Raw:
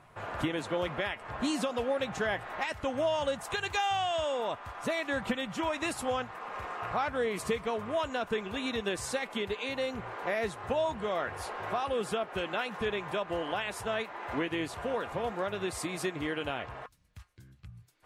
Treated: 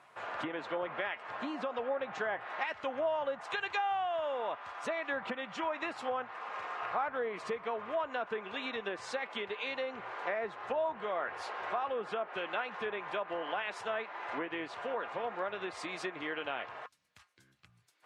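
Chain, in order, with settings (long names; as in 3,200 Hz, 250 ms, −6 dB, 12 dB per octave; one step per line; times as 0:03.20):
treble cut that deepens with the level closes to 1,500 Hz, closed at −27 dBFS
meter weighting curve A
level −1 dB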